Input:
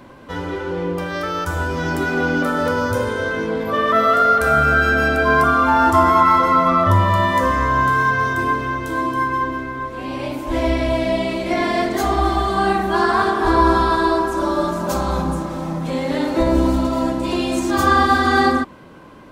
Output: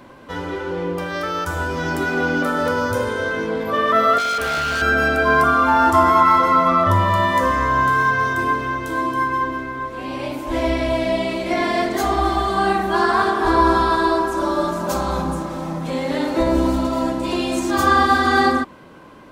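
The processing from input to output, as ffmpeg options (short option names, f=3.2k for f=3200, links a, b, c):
-filter_complex "[0:a]asettb=1/sr,asplit=3[a][b][c];[a]atrim=end=4.184[d];[b]atrim=start=4.18:end=4.82,asetpts=PTS-STARTPTS,afade=t=in:d=0.004:c=qsin,afade=t=out:st=0.636:d=0.004:c=qsin,volume=19.5dB,asoftclip=hard,volume=-19.5dB[e];[c]atrim=start=4.816[f];[d][e]acrossfade=d=0.004:c1=hsin:c2=qsin[g];[g][f]acrossfade=d=0.004:c1=qsin:c2=hsin,lowshelf=f=220:g=-4"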